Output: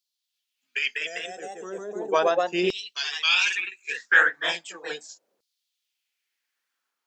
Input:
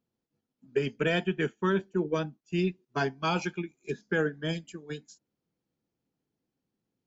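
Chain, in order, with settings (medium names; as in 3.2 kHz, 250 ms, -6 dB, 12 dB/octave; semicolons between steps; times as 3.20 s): time-frequency box 0.99–2.02 s, 760–4900 Hz -27 dB; ever faster or slower copies 240 ms, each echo +1 st, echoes 2; LFO high-pass saw down 0.37 Hz 490–4400 Hz; trim +8 dB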